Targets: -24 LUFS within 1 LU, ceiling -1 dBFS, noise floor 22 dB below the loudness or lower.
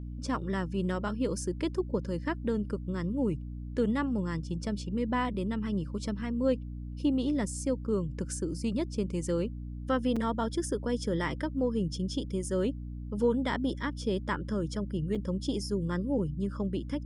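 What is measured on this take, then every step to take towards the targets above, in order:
dropouts 2; longest dropout 5.2 ms; hum 60 Hz; harmonics up to 300 Hz; hum level -37 dBFS; loudness -32.0 LUFS; peak -16.0 dBFS; loudness target -24.0 LUFS
-> interpolate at 10.16/15.15, 5.2 ms; de-hum 60 Hz, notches 5; gain +8 dB

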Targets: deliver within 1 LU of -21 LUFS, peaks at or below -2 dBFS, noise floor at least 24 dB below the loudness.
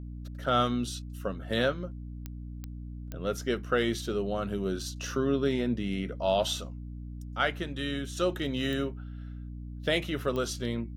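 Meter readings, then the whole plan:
clicks 5; hum 60 Hz; harmonics up to 300 Hz; hum level -38 dBFS; loudness -31.0 LUFS; peak -13.5 dBFS; loudness target -21.0 LUFS
-> de-click; notches 60/120/180/240/300 Hz; gain +10 dB

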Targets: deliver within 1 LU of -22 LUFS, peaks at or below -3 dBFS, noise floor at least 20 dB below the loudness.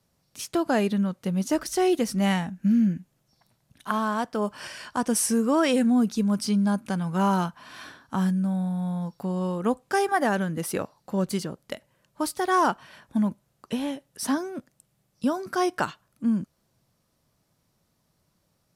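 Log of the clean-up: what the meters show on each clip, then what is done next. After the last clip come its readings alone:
loudness -26.0 LUFS; peak -9.0 dBFS; loudness target -22.0 LUFS
-> gain +4 dB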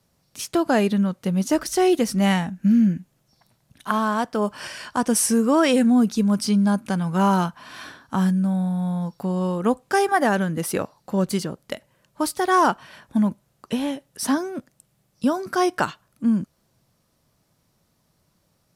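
loudness -22.0 LUFS; peak -5.0 dBFS; noise floor -68 dBFS

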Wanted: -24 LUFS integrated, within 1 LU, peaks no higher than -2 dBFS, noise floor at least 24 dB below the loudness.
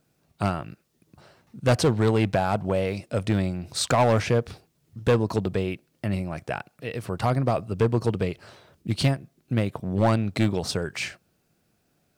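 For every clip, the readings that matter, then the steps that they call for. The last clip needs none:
clipped 1.0%; flat tops at -14.5 dBFS; loudness -25.5 LUFS; peak -14.5 dBFS; loudness target -24.0 LUFS
-> clip repair -14.5 dBFS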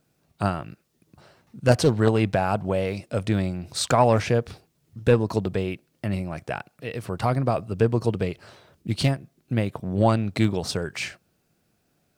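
clipped 0.0%; loudness -25.0 LUFS; peak -5.5 dBFS; loudness target -24.0 LUFS
-> gain +1 dB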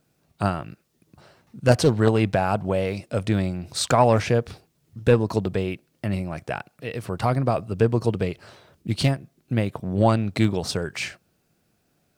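loudness -24.0 LUFS; peak -4.5 dBFS; noise floor -69 dBFS

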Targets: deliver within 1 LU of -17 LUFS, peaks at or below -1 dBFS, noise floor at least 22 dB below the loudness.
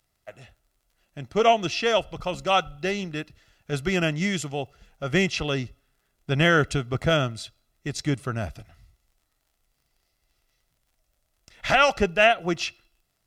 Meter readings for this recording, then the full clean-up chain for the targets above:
ticks 39/s; loudness -24.0 LUFS; peak -5.0 dBFS; loudness target -17.0 LUFS
-> de-click; gain +7 dB; limiter -1 dBFS

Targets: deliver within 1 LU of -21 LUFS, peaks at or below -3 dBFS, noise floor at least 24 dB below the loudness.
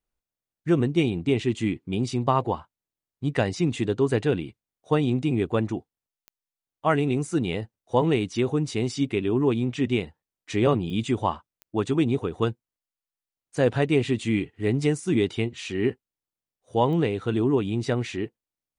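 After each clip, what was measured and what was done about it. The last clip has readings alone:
clicks 4; loudness -25.5 LUFS; peak -8.0 dBFS; loudness target -21.0 LUFS
-> de-click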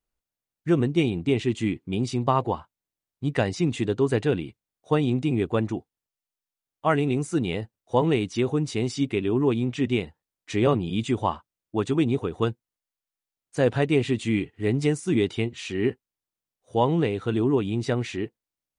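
clicks 0; loudness -25.5 LUFS; peak -8.0 dBFS; loudness target -21.0 LUFS
-> gain +4.5 dB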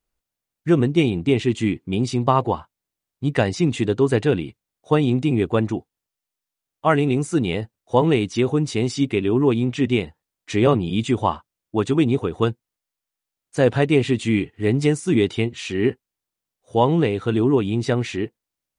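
loudness -21.0 LUFS; peak -3.5 dBFS; noise floor -86 dBFS

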